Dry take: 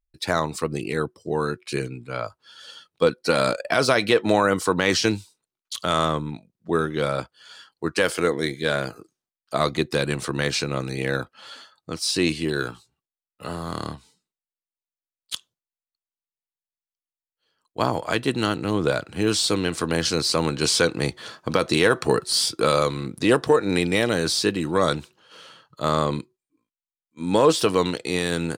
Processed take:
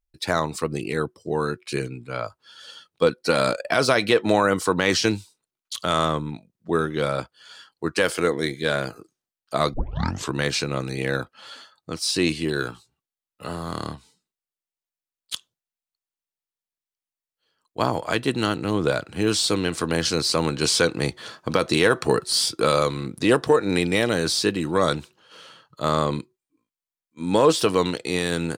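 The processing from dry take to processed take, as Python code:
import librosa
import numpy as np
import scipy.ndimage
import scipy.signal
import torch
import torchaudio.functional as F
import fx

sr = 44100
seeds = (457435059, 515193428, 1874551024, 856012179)

y = fx.edit(x, sr, fx.tape_start(start_s=9.74, length_s=0.59), tone=tone)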